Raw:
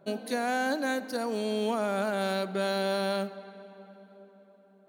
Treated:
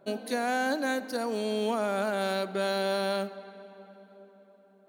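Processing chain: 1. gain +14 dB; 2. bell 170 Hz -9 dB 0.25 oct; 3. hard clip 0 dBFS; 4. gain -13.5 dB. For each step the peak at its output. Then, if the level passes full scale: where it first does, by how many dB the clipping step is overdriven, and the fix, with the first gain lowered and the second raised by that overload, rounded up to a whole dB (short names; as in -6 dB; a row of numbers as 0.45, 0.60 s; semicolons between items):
-2.0, -2.0, -2.0, -15.5 dBFS; no overload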